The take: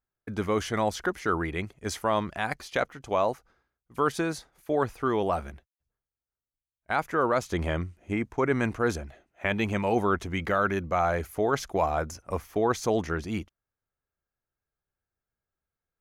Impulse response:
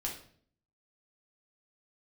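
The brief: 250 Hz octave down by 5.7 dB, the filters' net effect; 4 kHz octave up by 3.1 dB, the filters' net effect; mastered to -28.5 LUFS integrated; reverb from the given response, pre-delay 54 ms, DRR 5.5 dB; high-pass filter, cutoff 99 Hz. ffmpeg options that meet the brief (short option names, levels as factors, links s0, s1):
-filter_complex "[0:a]highpass=99,equalizer=f=250:t=o:g=-8,equalizer=f=4000:t=o:g=4,asplit=2[s0][s1];[1:a]atrim=start_sample=2205,adelay=54[s2];[s1][s2]afir=irnorm=-1:irlink=0,volume=0.473[s3];[s0][s3]amix=inputs=2:normalize=0,volume=1.06"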